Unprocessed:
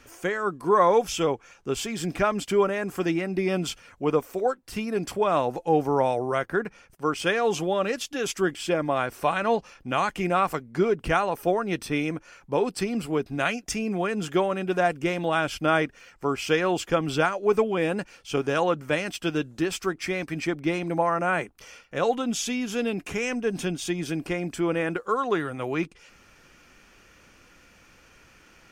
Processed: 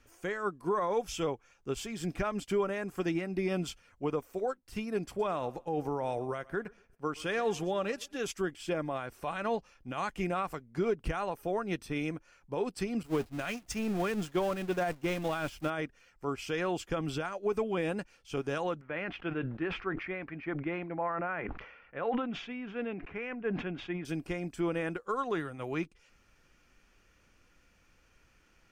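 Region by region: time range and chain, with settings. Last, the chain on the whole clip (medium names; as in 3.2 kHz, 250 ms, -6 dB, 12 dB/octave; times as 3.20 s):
5.07–8.21 s: thinning echo 119 ms, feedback 37%, high-pass 200 Hz, level -20 dB + tape noise reduction on one side only decoder only
13.03–15.70 s: jump at every zero crossing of -29.5 dBFS + expander -24 dBFS
18.81–24.05 s: low-pass 2.2 kHz 24 dB/octave + tilt EQ +2 dB/octave + decay stretcher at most 47 dB/s
whole clip: bass shelf 78 Hz +10 dB; peak limiter -17 dBFS; upward expansion 1.5:1, over -38 dBFS; trim -4.5 dB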